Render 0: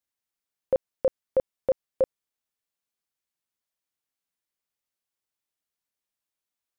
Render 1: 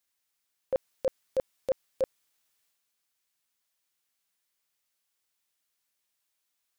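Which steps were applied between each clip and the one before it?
tilt shelf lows -4 dB; transient shaper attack -10 dB, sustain +5 dB; trim +5 dB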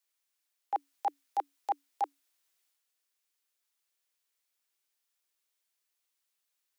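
frequency shift +280 Hz; trim -2.5 dB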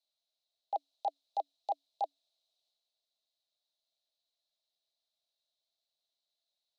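two resonant band-passes 1.6 kHz, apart 2.6 oct; trim +8.5 dB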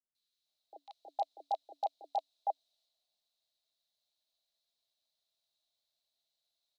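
three bands offset in time lows, highs, mids 150/460 ms, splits 410/1400 Hz; trim +2 dB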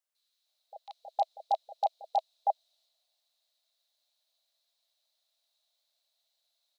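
brick-wall FIR high-pass 490 Hz; trim +6 dB

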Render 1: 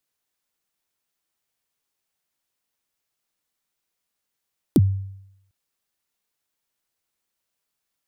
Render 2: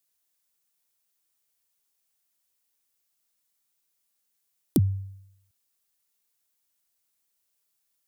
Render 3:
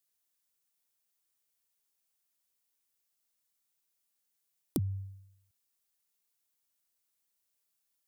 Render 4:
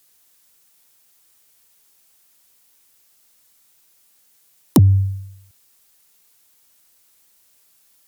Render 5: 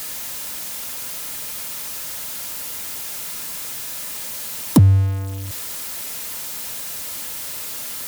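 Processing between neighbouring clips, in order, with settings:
treble shelf 4.9 kHz +11.5 dB; trim -4.5 dB
compression 4:1, threshold -25 dBFS, peak gain reduction 7 dB; trim -4.5 dB
sine folder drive 10 dB, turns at -14.5 dBFS; trim +9 dB
jump at every zero crossing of -23 dBFS; comb of notches 380 Hz

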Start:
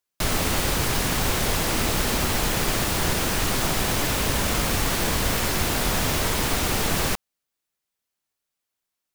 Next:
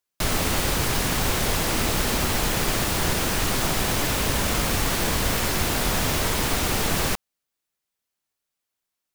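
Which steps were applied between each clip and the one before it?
no audible change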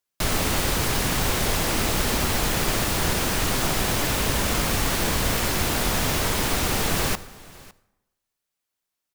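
delay 557 ms -22 dB; reverberation RT60 0.95 s, pre-delay 58 ms, DRR 17.5 dB

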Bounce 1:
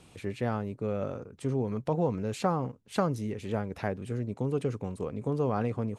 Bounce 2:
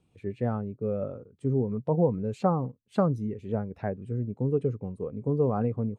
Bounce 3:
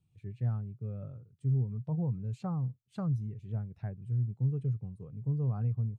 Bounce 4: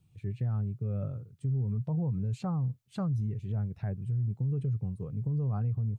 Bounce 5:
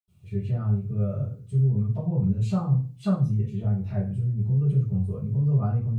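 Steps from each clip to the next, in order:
spectral contrast expander 1.5:1; trim +2 dB
graphic EQ 125/250/500/1000/2000 Hz +12/-8/-11/-5/-4 dB; trim -8 dB
peak limiter -33 dBFS, peak gain reduction 11.5 dB; trim +8 dB
reverberation RT60 0.35 s, pre-delay 77 ms; trim +6 dB

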